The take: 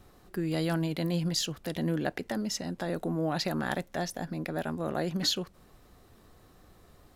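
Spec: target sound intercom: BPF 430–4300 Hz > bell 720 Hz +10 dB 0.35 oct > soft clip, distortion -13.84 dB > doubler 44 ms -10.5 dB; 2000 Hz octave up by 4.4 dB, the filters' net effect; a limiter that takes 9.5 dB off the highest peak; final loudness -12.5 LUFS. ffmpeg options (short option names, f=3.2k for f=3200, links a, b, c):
-filter_complex "[0:a]equalizer=f=2k:t=o:g=5.5,alimiter=limit=-23dB:level=0:latency=1,highpass=430,lowpass=4.3k,equalizer=f=720:t=o:w=0.35:g=10,asoftclip=threshold=-27dB,asplit=2[a][b];[b]adelay=44,volume=-10.5dB[c];[a][c]amix=inputs=2:normalize=0,volume=24.5dB"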